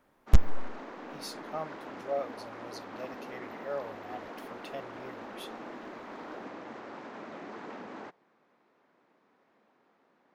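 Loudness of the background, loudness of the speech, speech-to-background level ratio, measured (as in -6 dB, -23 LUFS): -44.0 LUFS, -37.5 LUFS, 6.5 dB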